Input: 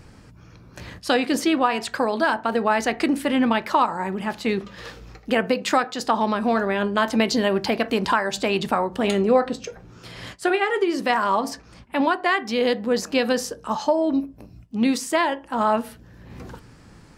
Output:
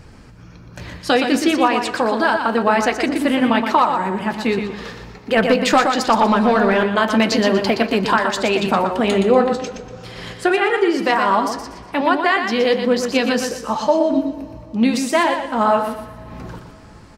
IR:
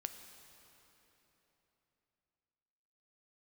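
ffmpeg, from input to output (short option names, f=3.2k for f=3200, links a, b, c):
-filter_complex "[0:a]aecho=1:1:120|240|360|480:0.447|0.134|0.0402|0.0121,flanger=delay=1.2:depth=5.6:regen=-56:speed=1.3:shape=triangular,asettb=1/sr,asplit=3[a][b][c];[a]atrim=end=5.374[d];[b]atrim=start=5.37:end=6.84,asetpts=PTS-STARTPTS,afade=t=in:d=0.004:c=qsin,afade=t=out:st=1.466:d=0.004:c=qsin,aeval=exprs='0.316*(cos(1*acos(clip(val(0)/0.316,-1,1)))-cos(1*PI/2))+0.0316*(cos(5*acos(clip(val(0)/0.316,-1,1)))-cos(5*PI/2))+0.00224*(cos(8*acos(clip(val(0)/0.316,-1,1)))-cos(8*PI/2))':c=same[e];[c]atrim=start=6.836[f];[d][e]acrossfade=d=0.004:c1=hsin:c2=qsin[g];[g][f]acrossfade=d=0.004:c1=qsin:c2=hsin,asplit=2[h][i];[1:a]atrim=start_sample=2205,asetrate=38808,aresample=44100,lowpass=8.2k[j];[i][j]afir=irnorm=-1:irlink=0,volume=-7dB[k];[h][k]amix=inputs=2:normalize=0,volume=5.5dB"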